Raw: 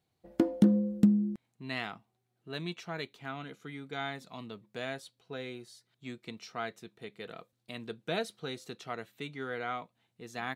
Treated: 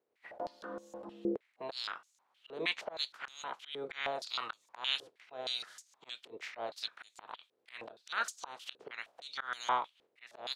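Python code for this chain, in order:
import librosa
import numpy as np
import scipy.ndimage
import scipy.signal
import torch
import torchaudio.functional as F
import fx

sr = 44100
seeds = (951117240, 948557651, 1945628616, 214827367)

y = fx.spec_clip(x, sr, under_db=25)
y = fx.dynamic_eq(y, sr, hz=2100.0, q=2.0, threshold_db=-52.0, ratio=4.0, max_db=-7)
y = fx.rider(y, sr, range_db=5, speed_s=2.0)
y = fx.auto_swell(y, sr, attack_ms=247.0)
y = fx.filter_held_bandpass(y, sr, hz=6.4, low_hz=440.0, high_hz=6700.0)
y = y * librosa.db_to_amplitude(13.5)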